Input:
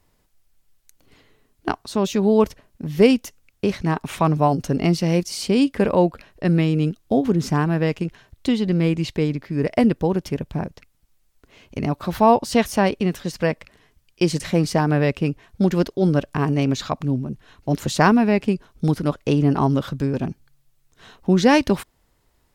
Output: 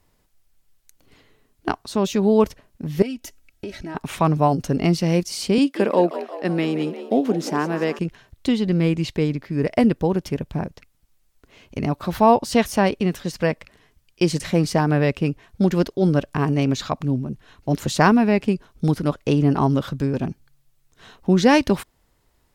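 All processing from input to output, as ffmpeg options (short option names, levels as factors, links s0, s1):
-filter_complex "[0:a]asettb=1/sr,asplit=3[s0][s1][s2];[s0]atrim=end=3.024[s3];[s1]atrim=start=3.02:end=3.95,asetpts=PTS-STARTPTS,afade=t=in:d=0.004:c=qsin,afade=t=out:st=0.926:d=0.004:c=qsin,aecho=1:1:3.1:0.65,atrim=end_sample=41013,acompressor=threshold=0.0251:ratio=3:attack=3.2:release=140:knee=1:detection=peak,asuperstop=centerf=1100:order=8:qfactor=4[s4];[s2]atrim=start=3.946[s5];[s3][s4]acrossfade=d=0.004:c1=hsin:c2=qsin[s6];[s6][s5]acrossfade=d=0.004:c1=qsin:c2=hsin,asettb=1/sr,asplit=3[s7][s8][s9];[s7]atrim=end=5.584[s10];[s8]atrim=start=5.58:end=7.99,asetpts=PTS-STARTPTS,afade=t=in:d=0.004:c=qsin,afade=t=out:st=2.406:d=0.004:c=qsin,highpass=f=210:w=0.5412,highpass=f=210:w=1.3066,asplit=7[s11][s12][s13][s14][s15][s16][s17];[s12]adelay=176,afreqshift=64,volume=0.224[s18];[s13]adelay=352,afreqshift=128,volume=0.127[s19];[s14]adelay=528,afreqshift=192,volume=0.0724[s20];[s15]adelay=704,afreqshift=256,volume=0.0417[s21];[s16]adelay=880,afreqshift=320,volume=0.0237[s22];[s17]adelay=1056,afreqshift=384,volume=0.0135[s23];[s11][s18][s19][s20][s21][s22][s23]amix=inputs=7:normalize=0,atrim=end_sample=106281[s24];[s9]atrim=start=7.986[s25];[s10][s24]acrossfade=d=0.004:c1=hsin:c2=qsin[s26];[s26][s25]acrossfade=d=0.004:c1=qsin:c2=hsin"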